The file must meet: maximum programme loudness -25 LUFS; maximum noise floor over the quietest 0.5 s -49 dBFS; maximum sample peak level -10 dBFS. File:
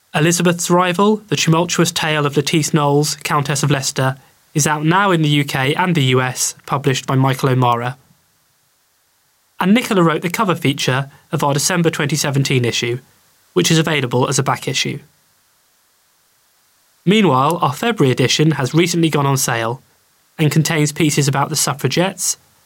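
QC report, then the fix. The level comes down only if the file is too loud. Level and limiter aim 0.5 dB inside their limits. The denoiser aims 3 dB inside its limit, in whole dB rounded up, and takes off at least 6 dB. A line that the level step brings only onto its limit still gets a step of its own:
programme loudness -16.0 LUFS: fail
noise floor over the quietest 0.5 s -60 dBFS: OK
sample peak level -2.5 dBFS: fail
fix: gain -9.5 dB

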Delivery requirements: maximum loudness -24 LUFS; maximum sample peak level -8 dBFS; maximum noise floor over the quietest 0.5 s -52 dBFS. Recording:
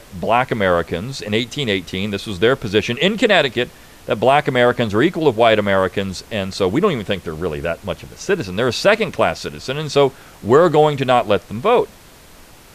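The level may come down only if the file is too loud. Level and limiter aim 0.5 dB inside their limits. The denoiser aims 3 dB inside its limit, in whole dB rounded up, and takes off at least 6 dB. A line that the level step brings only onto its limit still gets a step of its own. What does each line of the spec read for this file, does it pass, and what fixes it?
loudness -17.5 LUFS: fail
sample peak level -2.0 dBFS: fail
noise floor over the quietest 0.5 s -43 dBFS: fail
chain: denoiser 6 dB, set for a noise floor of -43 dBFS; gain -7 dB

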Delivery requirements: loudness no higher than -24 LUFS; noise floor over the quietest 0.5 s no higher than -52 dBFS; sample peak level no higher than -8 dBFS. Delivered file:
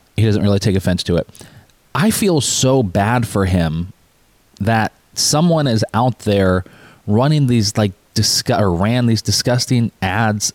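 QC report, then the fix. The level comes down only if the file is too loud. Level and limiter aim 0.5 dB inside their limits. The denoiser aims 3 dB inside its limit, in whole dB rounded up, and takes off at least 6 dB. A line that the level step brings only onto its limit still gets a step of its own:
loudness -16.0 LUFS: fail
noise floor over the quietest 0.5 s -54 dBFS: OK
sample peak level -5.5 dBFS: fail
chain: gain -8.5 dB

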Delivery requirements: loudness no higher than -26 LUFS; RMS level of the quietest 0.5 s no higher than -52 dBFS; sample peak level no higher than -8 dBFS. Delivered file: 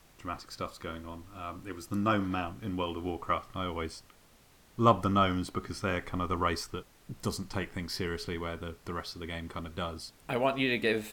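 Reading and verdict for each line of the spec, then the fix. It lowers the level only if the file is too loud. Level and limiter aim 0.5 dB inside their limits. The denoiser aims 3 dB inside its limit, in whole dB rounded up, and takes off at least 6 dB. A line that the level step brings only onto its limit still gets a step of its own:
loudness -33.0 LUFS: OK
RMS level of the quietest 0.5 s -60 dBFS: OK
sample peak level -10.0 dBFS: OK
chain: none

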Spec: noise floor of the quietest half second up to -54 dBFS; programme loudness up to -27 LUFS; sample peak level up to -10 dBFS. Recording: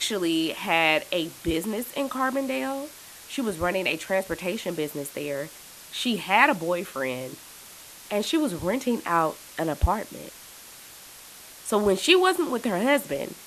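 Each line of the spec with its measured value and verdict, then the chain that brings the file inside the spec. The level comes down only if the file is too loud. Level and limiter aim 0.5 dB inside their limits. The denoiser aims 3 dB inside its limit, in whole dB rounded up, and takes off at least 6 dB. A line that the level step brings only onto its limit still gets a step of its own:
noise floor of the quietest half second -46 dBFS: fail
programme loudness -25.5 LUFS: fail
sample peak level -4.0 dBFS: fail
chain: denoiser 9 dB, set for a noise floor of -46 dBFS; gain -2 dB; limiter -10.5 dBFS

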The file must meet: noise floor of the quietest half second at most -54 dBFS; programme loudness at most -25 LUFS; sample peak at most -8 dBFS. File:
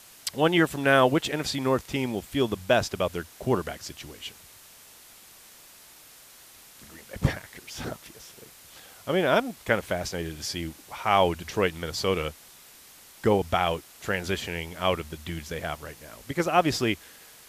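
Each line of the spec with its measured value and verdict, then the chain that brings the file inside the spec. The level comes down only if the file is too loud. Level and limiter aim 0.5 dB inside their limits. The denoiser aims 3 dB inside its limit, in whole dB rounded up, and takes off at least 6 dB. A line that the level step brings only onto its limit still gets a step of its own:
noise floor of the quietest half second -51 dBFS: fail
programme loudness -27.0 LUFS: OK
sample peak -6.5 dBFS: fail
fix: denoiser 6 dB, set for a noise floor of -51 dBFS; limiter -8.5 dBFS

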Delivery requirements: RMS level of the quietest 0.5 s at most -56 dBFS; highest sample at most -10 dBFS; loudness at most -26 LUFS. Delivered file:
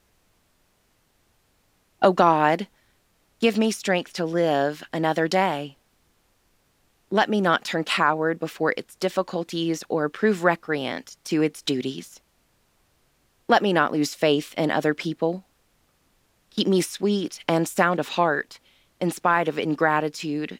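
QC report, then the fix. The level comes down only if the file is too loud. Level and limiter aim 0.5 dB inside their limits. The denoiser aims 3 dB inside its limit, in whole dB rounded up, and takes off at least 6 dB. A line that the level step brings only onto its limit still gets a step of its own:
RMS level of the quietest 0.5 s -66 dBFS: OK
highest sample -4.0 dBFS: fail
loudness -23.5 LUFS: fail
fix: gain -3 dB; limiter -10.5 dBFS

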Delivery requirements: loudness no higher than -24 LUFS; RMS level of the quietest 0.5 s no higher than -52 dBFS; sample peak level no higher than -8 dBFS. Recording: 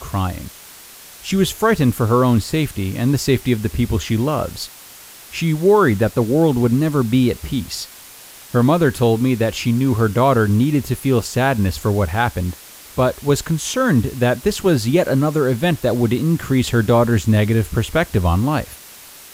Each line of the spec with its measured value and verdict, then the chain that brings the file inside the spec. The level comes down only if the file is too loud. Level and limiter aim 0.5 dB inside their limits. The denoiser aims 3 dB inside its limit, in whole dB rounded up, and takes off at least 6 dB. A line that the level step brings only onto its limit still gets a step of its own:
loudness -18.0 LUFS: fail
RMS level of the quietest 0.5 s -40 dBFS: fail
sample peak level -4.0 dBFS: fail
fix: denoiser 9 dB, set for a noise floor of -40 dBFS; gain -6.5 dB

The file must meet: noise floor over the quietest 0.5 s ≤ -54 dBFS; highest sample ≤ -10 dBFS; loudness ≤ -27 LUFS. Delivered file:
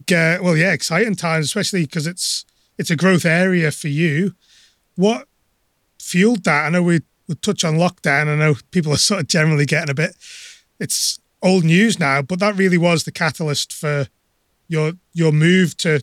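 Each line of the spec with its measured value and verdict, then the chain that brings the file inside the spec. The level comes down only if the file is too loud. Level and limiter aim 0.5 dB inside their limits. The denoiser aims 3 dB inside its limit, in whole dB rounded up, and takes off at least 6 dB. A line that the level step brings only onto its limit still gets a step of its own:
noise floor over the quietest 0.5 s -66 dBFS: OK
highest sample -4.0 dBFS: fail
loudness -17.5 LUFS: fail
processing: gain -10 dB

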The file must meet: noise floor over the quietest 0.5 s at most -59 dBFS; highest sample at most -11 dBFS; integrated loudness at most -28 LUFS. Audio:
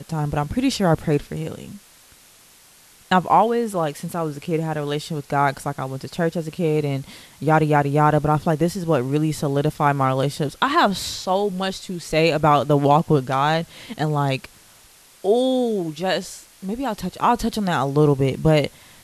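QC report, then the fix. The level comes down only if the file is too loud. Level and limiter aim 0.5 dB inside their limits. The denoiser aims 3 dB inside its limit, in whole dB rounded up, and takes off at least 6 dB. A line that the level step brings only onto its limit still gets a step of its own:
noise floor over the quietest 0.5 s -51 dBFS: fail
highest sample -5.0 dBFS: fail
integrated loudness -21.0 LUFS: fail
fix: denoiser 6 dB, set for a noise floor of -51 dBFS; gain -7.5 dB

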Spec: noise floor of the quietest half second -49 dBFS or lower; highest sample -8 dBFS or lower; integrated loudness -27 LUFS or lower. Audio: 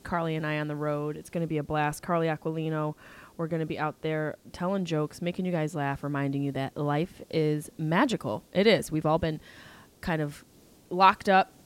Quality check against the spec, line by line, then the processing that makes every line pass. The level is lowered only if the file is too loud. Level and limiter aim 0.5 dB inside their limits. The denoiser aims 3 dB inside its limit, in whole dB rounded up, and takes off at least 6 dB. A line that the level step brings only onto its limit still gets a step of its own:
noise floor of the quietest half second -56 dBFS: OK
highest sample -6.5 dBFS: fail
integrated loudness -28.5 LUFS: OK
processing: limiter -8.5 dBFS

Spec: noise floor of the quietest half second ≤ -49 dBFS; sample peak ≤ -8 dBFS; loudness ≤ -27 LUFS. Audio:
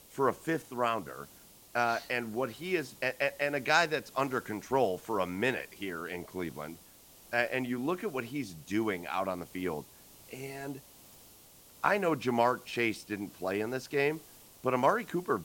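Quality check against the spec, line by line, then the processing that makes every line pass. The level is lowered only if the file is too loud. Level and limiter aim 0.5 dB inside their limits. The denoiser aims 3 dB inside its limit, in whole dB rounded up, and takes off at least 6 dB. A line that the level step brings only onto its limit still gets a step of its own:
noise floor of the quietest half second -57 dBFS: OK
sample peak -10.5 dBFS: OK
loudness -32.5 LUFS: OK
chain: none

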